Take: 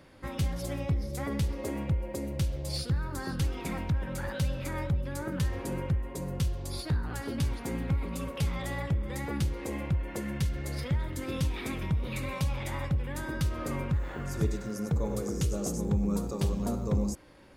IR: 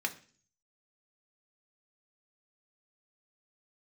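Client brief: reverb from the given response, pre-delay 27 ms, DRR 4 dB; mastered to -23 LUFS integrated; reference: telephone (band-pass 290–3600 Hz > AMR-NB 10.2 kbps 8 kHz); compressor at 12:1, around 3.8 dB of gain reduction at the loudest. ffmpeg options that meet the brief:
-filter_complex "[0:a]acompressor=threshold=0.0447:ratio=12,asplit=2[s0][s1];[1:a]atrim=start_sample=2205,adelay=27[s2];[s1][s2]afir=irnorm=-1:irlink=0,volume=0.376[s3];[s0][s3]amix=inputs=2:normalize=0,highpass=290,lowpass=3600,volume=7.5" -ar 8000 -c:a libopencore_amrnb -b:a 10200

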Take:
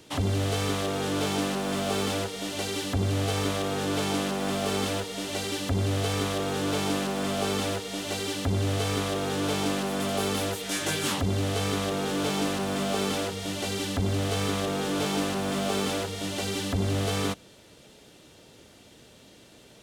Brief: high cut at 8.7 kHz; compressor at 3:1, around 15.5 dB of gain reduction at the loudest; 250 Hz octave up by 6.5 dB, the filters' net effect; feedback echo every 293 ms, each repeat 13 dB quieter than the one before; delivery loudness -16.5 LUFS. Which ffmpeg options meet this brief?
-af "lowpass=8700,equalizer=f=250:t=o:g=8.5,acompressor=threshold=0.00891:ratio=3,aecho=1:1:293|586|879:0.224|0.0493|0.0108,volume=13.3"

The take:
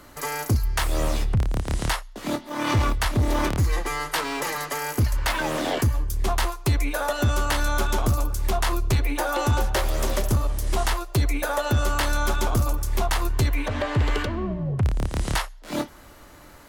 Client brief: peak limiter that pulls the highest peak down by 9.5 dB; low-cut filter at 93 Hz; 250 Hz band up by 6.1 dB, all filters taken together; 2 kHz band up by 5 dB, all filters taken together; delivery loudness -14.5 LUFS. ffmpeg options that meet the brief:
-af "highpass=93,equalizer=f=250:t=o:g=8,equalizer=f=2000:t=o:g=6.5,volume=4.47,alimiter=limit=0.562:level=0:latency=1"

